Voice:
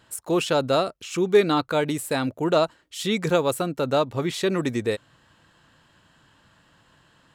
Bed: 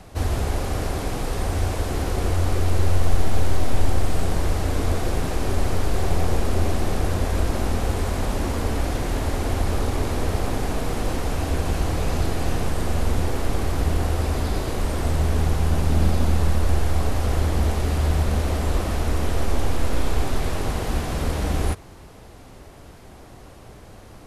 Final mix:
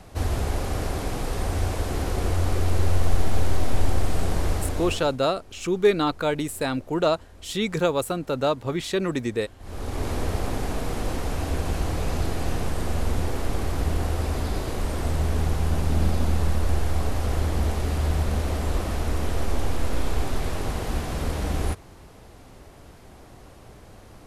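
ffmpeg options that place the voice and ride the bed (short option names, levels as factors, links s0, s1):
-filter_complex "[0:a]adelay=4500,volume=0.841[s0];[1:a]volume=11.2,afade=t=out:st=4.53:d=0.65:silence=0.0630957,afade=t=in:st=9.59:d=0.5:silence=0.0707946[s1];[s0][s1]amix=inputs=2:normalize=0"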